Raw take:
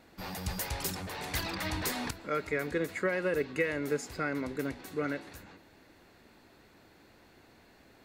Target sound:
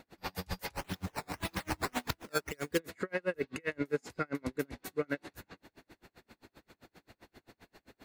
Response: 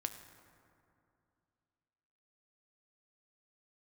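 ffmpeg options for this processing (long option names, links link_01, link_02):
-filter_complex "[0:a]asplit=3[link_01][link_02][link_03];[link_01]afade=type=out:start_time=0.72:duration=0.02[link_04];[link_02]acrusher=samples=10:mix=1:aa=0.000001:lfo=1:lforange=10:lforate=1.8,afade=type=in:start_time=0.72:duration=0.02,afade=type=out:start_time=2.78:duration=0.02[link_05];[link_03]afade=type=in:start_time=2.78:duration=0.02[link_06];[link_04][link_05][link_06]amix=inputs=3:normalize=0,alimiter=level_in=1.5dB:limit=-24dB:level=0:latency=1:release=111,volume=-1.5dB,aeval=exprs='val(0)*pow(10,-38*(0.5-0.5*cos(2*PI*7.6*n/s))/20)':channel_layout=same,volume=6dB"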